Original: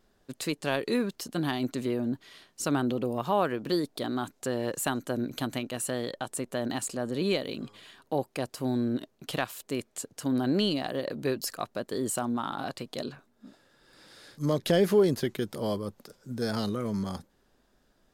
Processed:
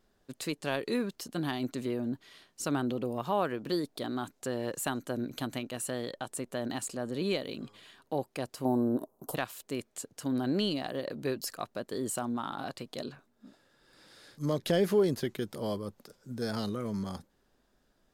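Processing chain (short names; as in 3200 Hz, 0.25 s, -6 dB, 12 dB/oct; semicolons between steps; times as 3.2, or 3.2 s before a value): 8.65–9.35 EQ curve 150 Hz 0 dB, 990 Hz +12 dB, 2400 Hz -26 dB, 12000 Hz +11 dB; gain -3.5 dB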